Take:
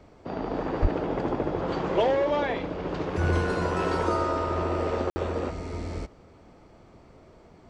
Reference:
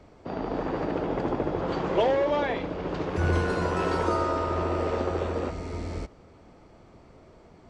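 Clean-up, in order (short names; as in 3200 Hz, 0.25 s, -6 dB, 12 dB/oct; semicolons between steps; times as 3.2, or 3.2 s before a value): 0.81–0.93 HPF 140 Hz 24 dB/oct; room tone fill 5.1–5.16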